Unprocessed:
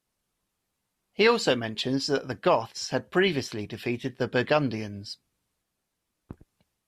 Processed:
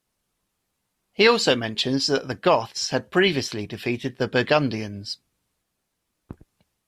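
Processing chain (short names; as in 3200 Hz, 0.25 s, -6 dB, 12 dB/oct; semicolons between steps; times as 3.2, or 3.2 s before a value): dynamic EQ 4700 Hz, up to +4 dB, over -43 dBFS, Q 0.74; gain +3.5 dB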